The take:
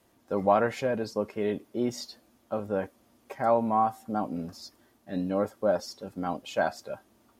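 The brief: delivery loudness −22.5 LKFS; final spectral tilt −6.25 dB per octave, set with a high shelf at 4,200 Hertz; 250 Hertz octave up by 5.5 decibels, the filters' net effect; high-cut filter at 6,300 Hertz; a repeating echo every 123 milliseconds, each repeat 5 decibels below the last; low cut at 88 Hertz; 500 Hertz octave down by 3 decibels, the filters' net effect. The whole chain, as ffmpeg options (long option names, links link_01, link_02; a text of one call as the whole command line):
ffmpeg -i in.wav -af "highpass=88,lowpass=6300,equalizer=frequency=250:width_type=o:gain=8,equalizer=frequency=500:width_type=o:gain=-5.5,highshelf=frequency=4200:gain=-4,aecho=1:1:123|246|369|492|615|738|861:0.562|0.315|0.176|0.0988|0.0553|0.031|0.0173,volume=5.5dB" out.wav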